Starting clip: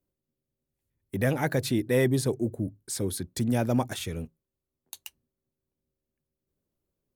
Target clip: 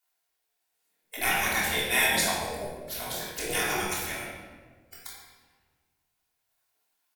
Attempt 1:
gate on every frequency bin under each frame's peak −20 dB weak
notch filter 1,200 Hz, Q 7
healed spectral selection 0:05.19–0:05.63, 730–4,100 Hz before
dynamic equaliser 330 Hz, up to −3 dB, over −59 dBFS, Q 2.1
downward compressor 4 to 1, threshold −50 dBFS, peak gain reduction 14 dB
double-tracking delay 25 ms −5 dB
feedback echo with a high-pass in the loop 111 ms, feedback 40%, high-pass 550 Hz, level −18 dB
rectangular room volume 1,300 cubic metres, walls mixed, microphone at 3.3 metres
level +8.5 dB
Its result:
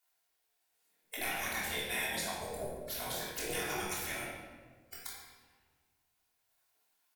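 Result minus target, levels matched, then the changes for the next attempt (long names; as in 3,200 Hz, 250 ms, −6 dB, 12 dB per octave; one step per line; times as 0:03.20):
downward compressor: peak gain reduction +14 dB
remove: downward compressor 4 to 1, threshold −50 dBFS, peak gain reduction 14 dB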